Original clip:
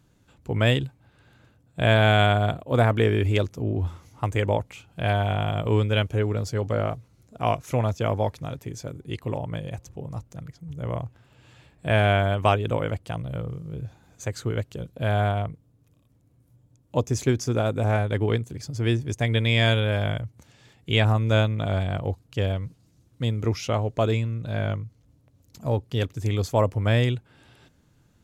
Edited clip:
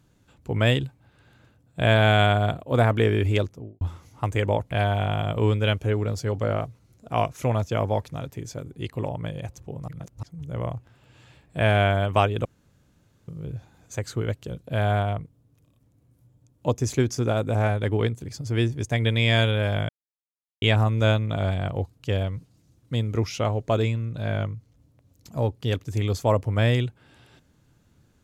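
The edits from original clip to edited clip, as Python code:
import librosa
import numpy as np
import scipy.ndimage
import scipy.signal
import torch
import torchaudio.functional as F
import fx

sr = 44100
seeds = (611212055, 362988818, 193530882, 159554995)

y = fx.studio_fade_out(x, sr, start_s=3.34, length_s=0.47)
y = fx.edit(y, sr, fx.cut(start_s=4.71, length_s=0.29),
    fx.reverse_span(start_s=10.17, length_s=0.35),
    fx.room_tone_fill(start_s=12.74, length_s=0.83),
    fx.silence(start_s=20.18, length_s=0.73), tone=tone)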